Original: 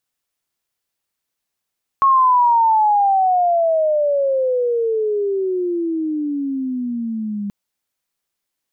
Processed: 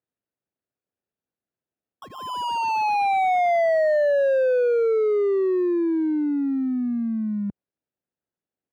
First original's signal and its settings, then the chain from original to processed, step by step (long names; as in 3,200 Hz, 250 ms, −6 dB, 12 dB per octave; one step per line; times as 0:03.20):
glide logarithmic 1,100 Hz → 200 Hz −9.5 dBFS → −21.5 dBFS 5.48 s
running median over 41 samples
high-pass filter 79 Hz
bass and treble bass −2 dB, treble −10 dB